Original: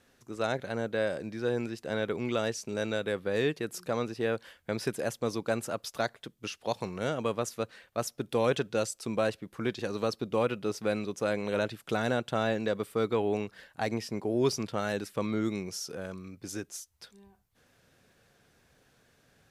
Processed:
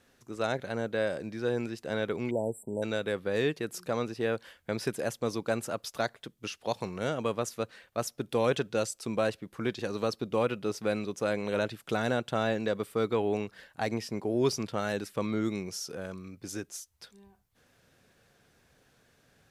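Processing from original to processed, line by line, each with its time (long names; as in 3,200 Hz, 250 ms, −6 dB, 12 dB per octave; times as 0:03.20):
0:02.30–0:02.83: time-frequency box erased 990–7,400 Hz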